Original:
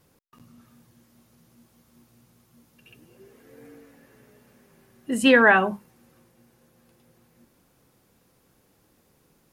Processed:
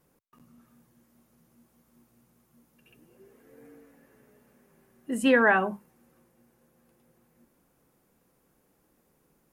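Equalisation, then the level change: peaking EQ 100 Hz -15 dB 0.34 oct; peaking EQ 4.1 kHz -7 dB 1.5 oct; -4.0 dB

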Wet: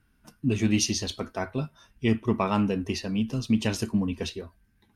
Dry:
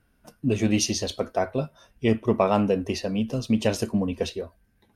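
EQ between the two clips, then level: peaking EQ 550 Hz -11.5 dB 0.7 oct; treble shelf 9.6 kHz -3.5 dB; band-stop 720 Hz, Q 17; 0.0 dB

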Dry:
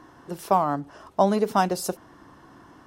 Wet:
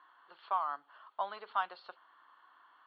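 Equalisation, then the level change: high-pass 1.4 kHz 12 dB/octave; rippled Chebyshev low-pass 4.5 kHz, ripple 9 dB; treble shelf 3.3 kHz -9.5 dB; 0.0 dB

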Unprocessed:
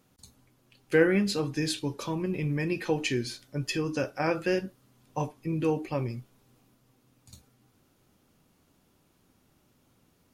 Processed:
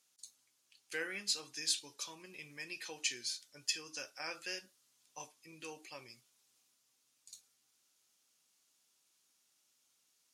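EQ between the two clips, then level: band-pass filter 6.8 kHz, Q 1.1; +2.5 dB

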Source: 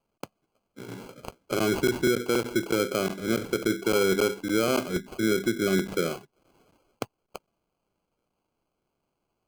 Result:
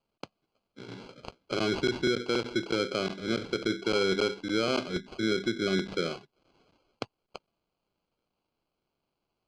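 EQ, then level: resonant low-pass 4.3 kHz, resonance Q 2.1; -4.0 dB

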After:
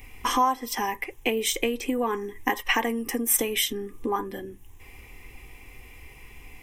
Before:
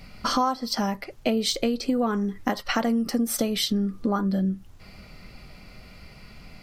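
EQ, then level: treble shelf 4.3 kHz +9.5 dB; dynamic bell 1.7 kHz, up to +5 dB, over -41 dBFS, Q 0.83; static phaser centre 920 Hz, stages 8; +1.5 dB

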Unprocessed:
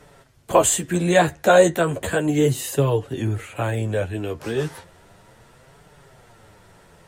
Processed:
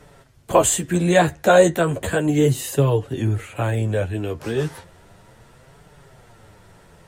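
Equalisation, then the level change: bass shelf 210 Hz +4 dB; 0.0 dB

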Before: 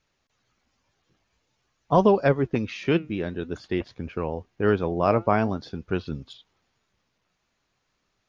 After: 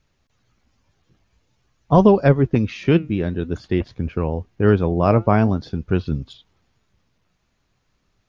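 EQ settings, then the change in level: bass shelf 220 Hz +11.5 dB; +2.0 dB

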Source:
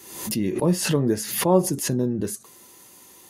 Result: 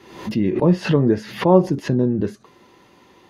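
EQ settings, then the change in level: distance through air 280 m; +5.5 dB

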